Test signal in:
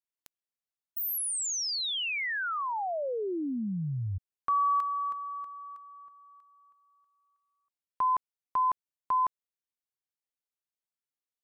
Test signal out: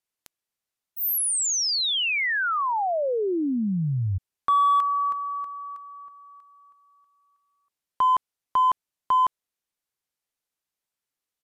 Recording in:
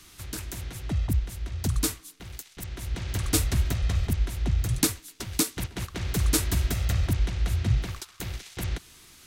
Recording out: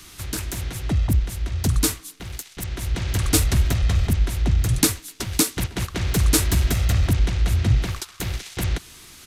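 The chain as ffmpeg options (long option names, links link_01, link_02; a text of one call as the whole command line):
ffmpeg -i in.wav -filter_complex "[0:a]asplit=2[link_01][link_02];[link_02]asoftclip=type=hard:threshold=-27dB,volume=-6.5dB[link_03];[link_01][link_03]amix=inputs=2:normalize=0,aresample=32000,aresample=44100,volume=4dB" out.wav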